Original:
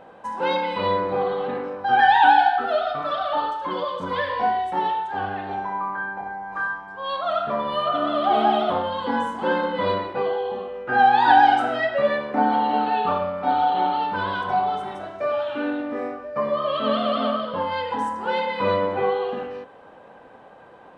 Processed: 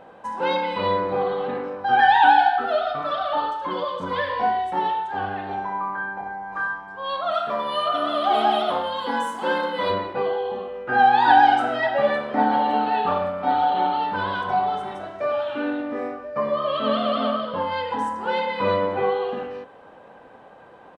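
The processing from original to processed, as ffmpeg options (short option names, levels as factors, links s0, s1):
-filter_complex "[0:a]asplit=3[s0][s1][s2];[s0]afade=t=out:st=7.32:d=0.02[s3];[s1]aemphasis=mode=production:type=bsi,afade=t=in:st=7.32:d=0.02,afade=t=out:st=9.89:d=0.02[s4];[s2]afade=t=in:st=9.89:d=0.02[s5];[s3][s4][s5]amix=inputs=3:normalize=0,asplit=2[s6][s7];[s7]afade=t=in:st=11.26:d=0.01,afade=t=out:st=12.18:d=0.01,aecho=0:1:560|1120|1680|2240|2800|3360|3920:0.177828|0.115588|0.0751323|0.048836|0.0317434|0.0206332|0.0134116[s8];[s6][s8]amix=inputs=2:normalize=0"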